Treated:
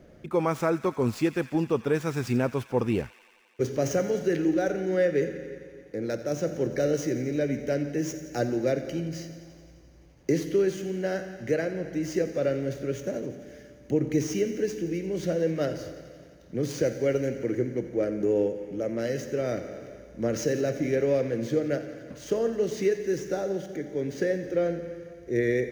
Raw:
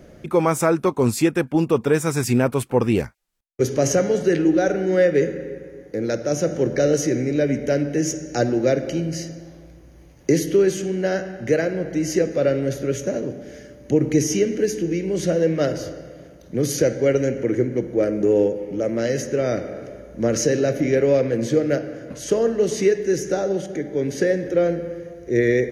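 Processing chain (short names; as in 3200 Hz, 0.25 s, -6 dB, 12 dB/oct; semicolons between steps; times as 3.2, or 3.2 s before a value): median filter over 5 samples; on a send: thin delay 87 ms, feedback 78%, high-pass 1600 Hz, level -14 dB; on the sum: gain -7 dB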